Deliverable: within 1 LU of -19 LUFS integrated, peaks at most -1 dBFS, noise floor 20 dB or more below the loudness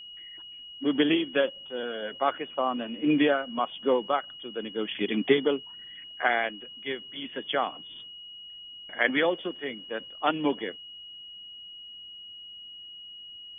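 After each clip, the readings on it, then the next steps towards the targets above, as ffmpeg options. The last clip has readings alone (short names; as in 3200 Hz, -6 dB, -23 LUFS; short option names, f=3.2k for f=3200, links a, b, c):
steady tone 2900 Hz; tone level -42 dBFS; loudness -28.5 LUFS; peak -8.0 dBFS; loudness target -19.0 LUFS
-> -af "bandreject=f=2.9k:w=30"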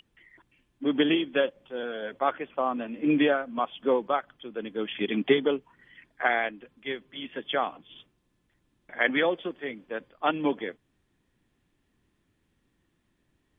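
steady tone none; loudness -28.5 LUFS; peak -8.0 dBFS; loudness target -19.0 LUFS
-> -af "volume=9.5dB,alimiter=limit=-1dB:level=0:latency=1"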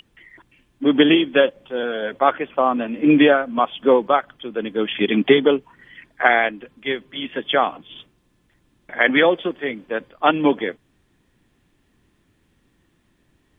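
loudness -19.0 LUFS; peak -1.0 dBFS; noise floor -64 dBFS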